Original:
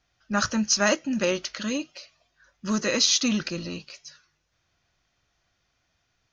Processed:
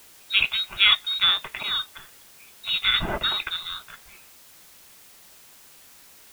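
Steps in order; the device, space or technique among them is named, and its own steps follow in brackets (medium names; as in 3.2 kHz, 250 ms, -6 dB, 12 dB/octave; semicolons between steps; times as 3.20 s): scrambled radio voice (band-pass 360–2700 Hz; frequency inversion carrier 4 kHz; white noise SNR 23 dB); trim +6 dB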